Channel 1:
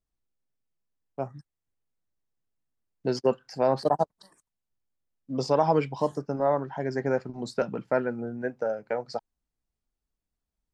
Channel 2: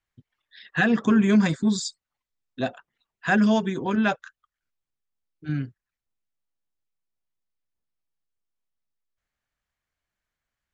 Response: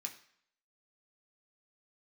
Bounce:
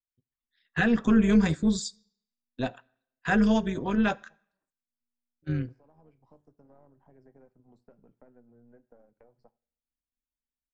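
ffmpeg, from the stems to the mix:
-filter_complex "[0:a]aeval=exprs='if(lt(val(0),0),0.708*val(0),val(0))':c=same,acrossover=split=420|1300[a][b][c];[a]acompressor=threshold=-42dB:ratio=4[d];[b]acompressor=threshold=-44dB:ratio=4[e];[c]acompressor=threshold=-60dB:ratio=4[f];[d][e][f]amix=inputs=3:normalize=0,highshelf=f=2.1k:g=-10,adelay=300,volume=-18dB,asplit=2[g][h];[h]volume=-6dB[i];[1:a]agate=range=-20dB:threshold=-40dB:ratio=16:detection=peak,volume=-3dB,asplit=3[j][k][l];[k]volume=-10.5dB[m];[l]apad=whole_len=486590[n];[g][n]sidechaincompress=threshold=-38dB:ratio=3:attack=16:release=746[o];[2:a]atrim=start_sample=2205[p];[i][m]amix=inputs=2:normalize=0[q];[q][p]afir=irnorm=-1:irlink=0[r];[o][j][r]amix=inputs=3:normalize=0,lowshelf=f=140:g=9.5,tremolo=f=240:d=0.519"

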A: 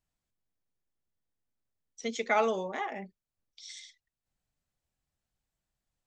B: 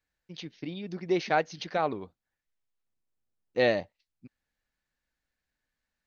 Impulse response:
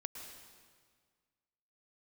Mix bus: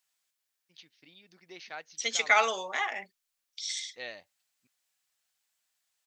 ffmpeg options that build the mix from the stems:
-filter_complex "[0:a]highpass=f=440:p=1,volume=2dB[a];[1:a]adelay=400,volume=-18dB[b];[a][b]amix=inputs=2:normalize=0,tiltshelf=f=800:g=-10"

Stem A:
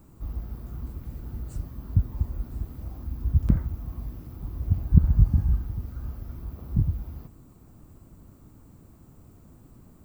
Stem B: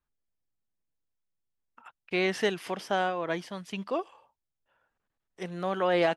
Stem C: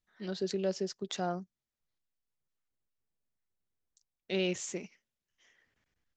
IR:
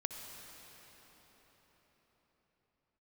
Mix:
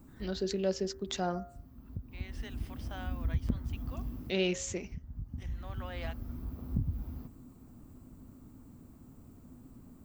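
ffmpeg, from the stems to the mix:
-filter_complex "[0:a]equalizer=f=250:t=o:w=0.31:g=10.5,acompressor=threshold=-23dB:ratio=6,volume=-4dB[a];[1:a]highpass=f=1.3k:p=1,volume=-12.5dB,afade=t=in:st=2.14:d=0.7:silence=0.354813[b];[2:a]bandreject=f=77.57:t=h:w=4,bandreject=f=155.14:t=h:w=4,bandreject=f=232.71:t=h:w=4,bandreject=f=310.28:t=h:w=4,bandreject=f=387.85:t=h:w=4,bandreject=f=465.42:t=h:w=4,bandreject=f=542.99:t=h:w=4,bandreject=f=620.56:t=h:w=4,bandreject=f=698.13:t=h:w=4,bandreject=f=775.7:t=h:w=4,bandreject=f=853.27:t=h:w=4,bandreject=f=930.84:t=h:w=4,bandreject=f=1.00841k:t=h:w=4,bandreject=f=1.08598k:t=h:w=4,bandreject=f=1.16355k:t=h:w=4,bandreject=f=1.24112k:t=h:w=4,bandreject=f=1.31869k:t=h:w=4,bandreject=f=1.39626k:t=h:w=4,bandreject=f=1.47383k:t=h:w=4,bandreject=f=1.5514k:t=h:w=4,bandreject=f=1.62897k:t=h:w=4,bandreject=f=1.70654k:t=h:w=4,bandreject=f=1.78411k:t=h:w=4,bandreject=f=1.86168k:t=h:w=4,bandreject=f=1.93925k:t=h:w=4,volume=1.5dB,asplit=2[c][d];[d]apad=whole_len=443143[e];[a][e]sidechaincompress=threshold=-43dB:ratio=5:attack=10:release=1240[f];[f][b][c]amix=inputs=3:normalize=0"

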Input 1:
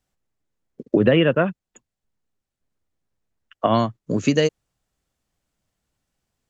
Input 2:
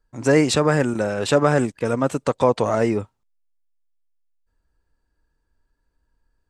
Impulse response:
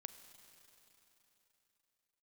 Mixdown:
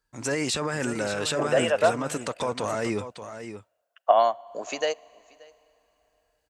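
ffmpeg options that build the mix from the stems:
-filter_complex "[0:a]highpass=f=710:t=q:w=3.8,highshelf=f=8.4k:g=8.5,adelay=450,volume=-8.5dB,asplit=3[a][b][c];[b]volume=-8dB[d];[c]volume=-23.5dB[e];[1:a]tiltshelf=f=1.2k:g=-5.5,alimiter=limit=-16.5dB:level=0:latency=1:release=16,volume=-1.5dB,asplit=2[f][g];[g]volume=-10.5dB[h];[2:a]atrim=start_sample=2205[i];[d][i]afir=irnorm=-1:irlink=0[j];[e][h]amix=inputs=2:normalize=0,aecho=0:1:580:1[k];[a][f][j][k]amix=inputs=4:normalize=0,highpass=43"

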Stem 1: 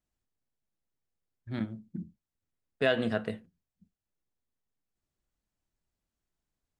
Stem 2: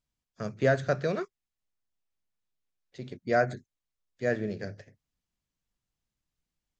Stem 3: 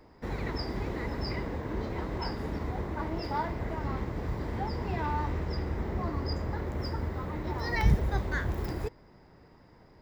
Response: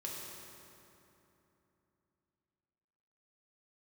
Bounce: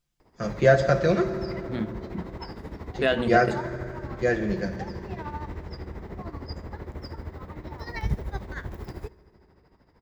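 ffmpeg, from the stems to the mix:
-filter_complex "[0:a]adelay=200,volume=3dB[a];[1:a]aecho=1:1:5.8:0.65,volume=1.5dB,asplit=2[b][c];[c]volume=-3.5dB[d];[2:a]tremolo=f=13:d=0.7,adelay=200,volume=-2dB,asplit=2[e][f];[f]volume=-21dB[g];[3:a]atrim=start_sample=2205[h];[d][g]amix=inputs=2:normalize=0[i];[i][h]afir=irnorm=-1:irlink=0[j];[a][b][e][j]amix=inputs=4:normalize=0"

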